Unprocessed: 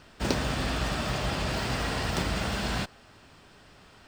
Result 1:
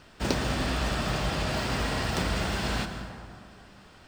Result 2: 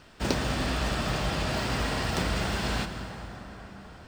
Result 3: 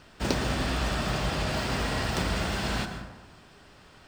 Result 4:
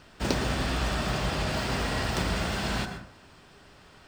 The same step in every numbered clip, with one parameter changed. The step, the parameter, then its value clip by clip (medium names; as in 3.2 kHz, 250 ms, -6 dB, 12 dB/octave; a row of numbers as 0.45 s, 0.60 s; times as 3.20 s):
plate-style reverb, RT60: 2.4 s, 5.2 s, 1.1 s, 0.53 s